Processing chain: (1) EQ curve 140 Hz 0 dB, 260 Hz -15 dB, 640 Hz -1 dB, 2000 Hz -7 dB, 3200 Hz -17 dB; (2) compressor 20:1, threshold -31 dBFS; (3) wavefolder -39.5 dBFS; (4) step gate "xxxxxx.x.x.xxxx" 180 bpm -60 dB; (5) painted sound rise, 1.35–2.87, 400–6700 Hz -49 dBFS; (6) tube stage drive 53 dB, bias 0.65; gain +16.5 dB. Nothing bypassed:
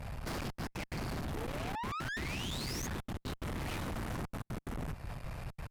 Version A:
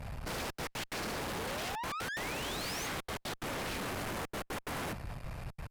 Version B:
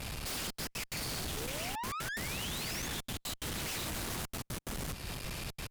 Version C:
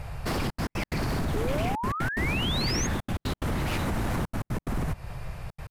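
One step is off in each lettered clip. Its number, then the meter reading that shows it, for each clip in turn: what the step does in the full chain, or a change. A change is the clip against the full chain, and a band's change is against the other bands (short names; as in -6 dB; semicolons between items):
2, mean gain reduction 7.5 dB; 1, 8 kHz band +9.5 dB; 6, crest factor change +2.0 dB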